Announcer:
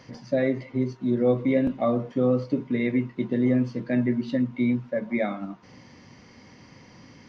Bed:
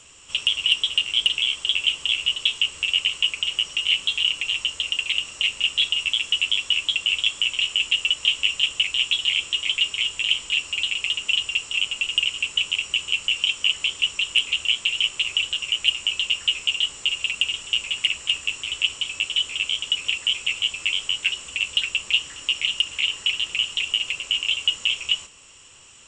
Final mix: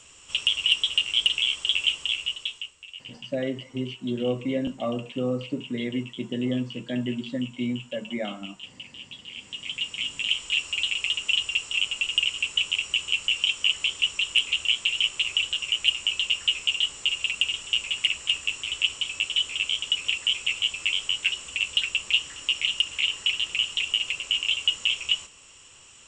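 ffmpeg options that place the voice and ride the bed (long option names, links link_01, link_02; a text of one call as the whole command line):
ffmpeg -i stem1.wav -i stem2.wav -filter_complex "[0:a]adelay=3000,volume=-5dB[link_01];[1:a]volume=16.5dB,afade=type=out:start_time=1.84:duration=0.92:silence=0.11885,afade=type=in:start_time=9.28:duration=1.33:silence=0.11885[link_02];[link_01][link_02]amix=inputs=2:normalize=0" out.wav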